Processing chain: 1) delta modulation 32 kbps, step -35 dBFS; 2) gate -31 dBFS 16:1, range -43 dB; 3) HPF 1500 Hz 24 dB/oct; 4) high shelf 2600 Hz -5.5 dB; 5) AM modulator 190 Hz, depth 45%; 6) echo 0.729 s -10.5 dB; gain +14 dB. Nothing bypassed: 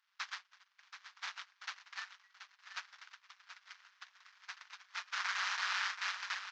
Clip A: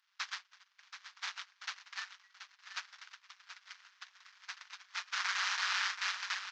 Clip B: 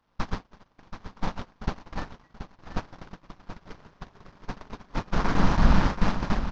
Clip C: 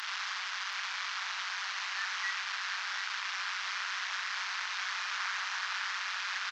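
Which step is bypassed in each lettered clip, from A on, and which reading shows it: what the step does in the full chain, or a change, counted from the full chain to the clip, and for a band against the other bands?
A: 4, 8 kHz band +3.5 dB; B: 3, 500 Hz band +30.5 dB; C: 2, momentary loudness spread change -20 LU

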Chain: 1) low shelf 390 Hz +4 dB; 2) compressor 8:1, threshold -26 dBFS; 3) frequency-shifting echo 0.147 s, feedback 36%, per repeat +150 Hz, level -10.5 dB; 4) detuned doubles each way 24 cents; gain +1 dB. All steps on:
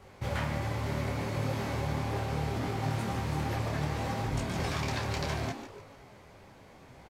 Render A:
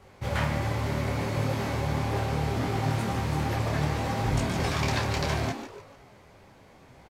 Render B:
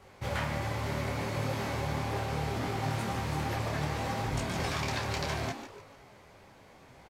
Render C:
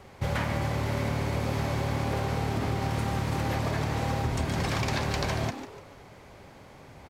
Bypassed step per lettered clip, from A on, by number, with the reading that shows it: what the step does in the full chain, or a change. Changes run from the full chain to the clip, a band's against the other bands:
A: 2, mean gain reduction 3.5 dB; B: 1, 125 Hz band -3.0 dB; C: 4, crest factor change +3.5 dB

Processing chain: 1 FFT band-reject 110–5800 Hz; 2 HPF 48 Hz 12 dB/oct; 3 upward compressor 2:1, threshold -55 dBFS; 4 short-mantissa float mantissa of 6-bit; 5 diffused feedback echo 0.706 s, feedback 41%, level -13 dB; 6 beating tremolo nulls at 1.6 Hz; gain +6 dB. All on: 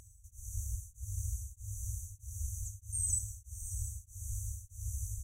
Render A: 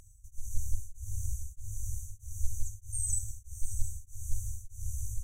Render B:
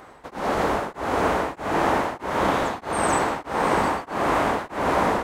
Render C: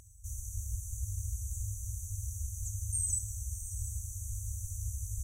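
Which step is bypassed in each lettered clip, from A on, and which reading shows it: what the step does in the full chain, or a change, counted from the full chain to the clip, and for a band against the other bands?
2, crest factor change -5.5 dB; 1, crest factor change -3.5 dB; 6, momentary loudness spread change -3 LU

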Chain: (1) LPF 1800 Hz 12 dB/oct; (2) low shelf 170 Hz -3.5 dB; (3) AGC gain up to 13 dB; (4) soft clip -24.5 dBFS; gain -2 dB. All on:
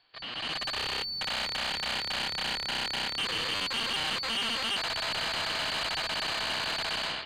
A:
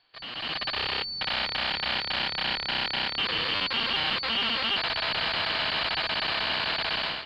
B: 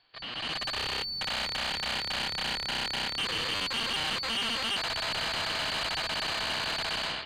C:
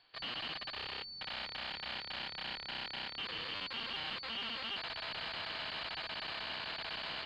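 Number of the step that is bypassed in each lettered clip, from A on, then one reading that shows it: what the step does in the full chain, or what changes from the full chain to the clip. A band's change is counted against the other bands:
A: 4, distortion -12 dB; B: 2, 125 Hz band +2.0 dB; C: 3, crest factor change +4.5 dB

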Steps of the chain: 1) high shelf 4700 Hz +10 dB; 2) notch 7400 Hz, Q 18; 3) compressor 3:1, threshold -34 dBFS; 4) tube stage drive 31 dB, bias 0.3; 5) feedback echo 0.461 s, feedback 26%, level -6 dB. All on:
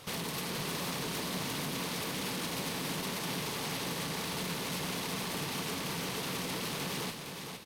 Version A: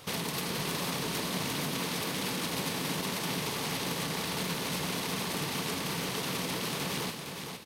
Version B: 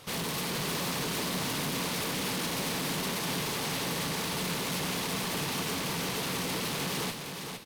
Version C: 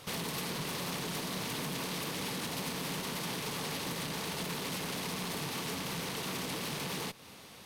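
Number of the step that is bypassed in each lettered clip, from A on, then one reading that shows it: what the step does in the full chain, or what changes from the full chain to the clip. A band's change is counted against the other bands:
4, crest factor change +4.0 dB; 3, mean gain reduction 7.5 dB; 5, crest factor change -2.0 dB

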